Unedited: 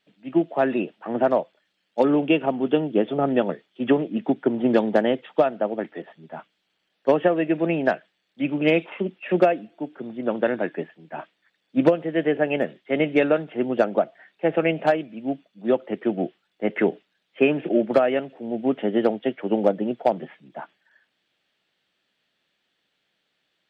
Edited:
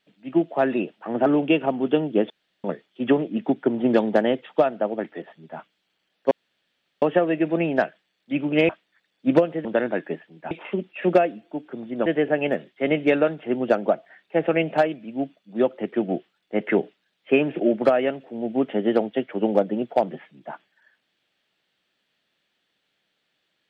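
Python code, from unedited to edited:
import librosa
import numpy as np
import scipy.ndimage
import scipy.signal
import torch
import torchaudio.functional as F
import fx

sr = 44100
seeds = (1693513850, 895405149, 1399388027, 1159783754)

y = fx.edit(x, sr, fx.cut(start_s=1.26, length_s=0.8),
    fx.room_tone_fill(start_s=3.1, length_s=0.34),
    fx.insert_room_tone(at_s=7.11, length_s=0.71),
    fx.swap(start_s=8.78, length_s=1.55, other_s=11.19, other_length_s=0.96), tone=tone)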